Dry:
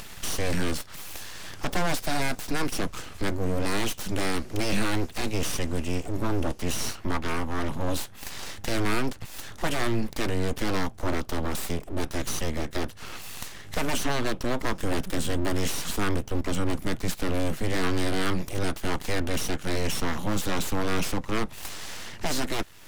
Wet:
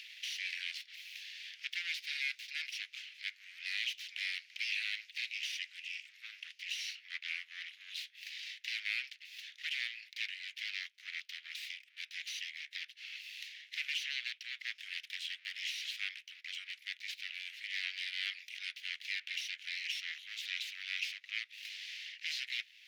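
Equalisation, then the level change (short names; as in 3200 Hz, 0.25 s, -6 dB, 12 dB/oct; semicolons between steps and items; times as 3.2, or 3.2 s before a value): steep high-pass 2100 Hz 48 dB/oct; air absorption 290 m; high shelf 10000 Hz +4.5 dB; +4.0 dB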